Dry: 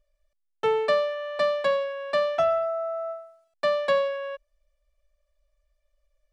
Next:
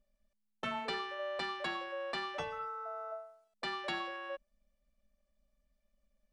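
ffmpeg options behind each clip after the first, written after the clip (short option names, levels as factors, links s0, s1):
-af "tremolo=f=210:d=0.4,afftfilt=real='re*lt(hypot(re,im),0.224)':imag='im*lt(hypot(re,im),0.224)':win_size=1024:overlap=0.75,volume=0.668"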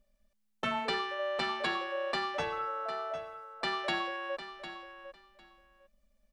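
-af "aecho=1:1:753|1506:0.266|0.0452,volume=1.78"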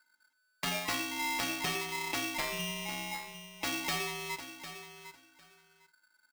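-filter_complex "[0:a]asplit=2[s0][s1];[s1]adelay=46,volume=0.224[s2];[s0][s2]amix=inputs=2:normalize=0,aeval=exprs='val(0)*sgn(sin(2*PI*1500*n/s))':c=same,volume=0.841"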